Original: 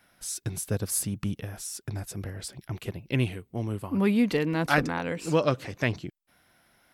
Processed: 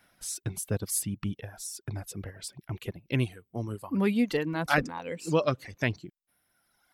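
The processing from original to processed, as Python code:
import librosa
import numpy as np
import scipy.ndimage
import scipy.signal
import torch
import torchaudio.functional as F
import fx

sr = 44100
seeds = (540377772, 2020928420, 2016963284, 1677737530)

y = fx.dereverb_blind(x, sr, rt60_s=1.6)
y = y * 10.0 ** (-1.0 / 20.0)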